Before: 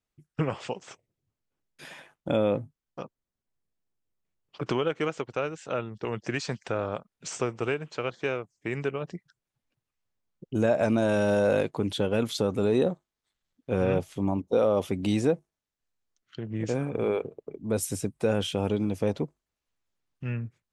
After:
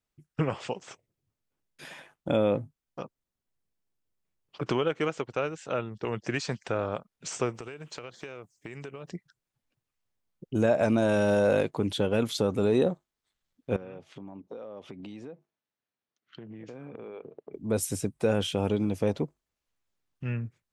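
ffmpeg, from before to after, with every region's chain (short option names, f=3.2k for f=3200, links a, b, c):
-filter_complex "[0:a]asettb=1/sr,asplit=3[a][b][c];[a]atrim=end=7.544[d];[b]atrim=start=7.54:end=9.11,asetpts=PTS-STARTPTS,afade=t=in:d=0.004:c=qsin,afade=t=out:st=1.566:d=0.004:c=qsin,highshelf=f=5.3k:g=10,acompressor=threshold=-36dB:ratio=12:attack=3.2:release=140:knee=1:detection=peak[e];[c]atrim=start=9.106[f];[d][e]acrossfade=d=0.004:c1=hsin:c2=qsin[g];[g][f]acrossfade=d=0.004:c1=qsin:c2=hsin,asettb=1/sr,asplit=3[h][i][j];[h]atrim=end=13.764[k];[i]atrim=start=13.76:end=17.53,asetpts=PTS-STARTPTS,afade=t=in:d=0.004:c=qsin,afade=t=out:st=3.766:d=0.004:c=qsin,acompressor=threshold=-37dB:ratio=20:attack=3.2:release=140:knee=1:detection=peak,highpass=150,lowpass=3.9k[l];[j]atrim=start=17.526[m];[k][l]acrossfade=d=0.004:c1=hsin:c2=qsin[n];[n][m]acrossfade=d=0.004:c1=qsin:c2=hsin"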